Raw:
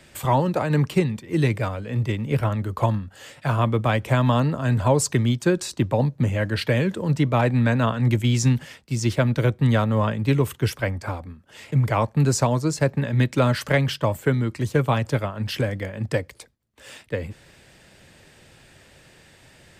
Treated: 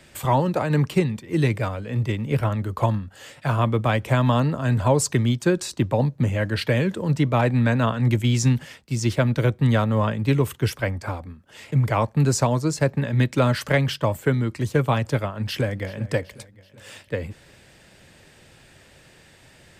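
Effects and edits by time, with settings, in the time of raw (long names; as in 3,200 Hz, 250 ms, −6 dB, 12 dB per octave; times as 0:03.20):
0:15.38–0:16.04: delay throw 380 ms, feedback 55%, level −18 dB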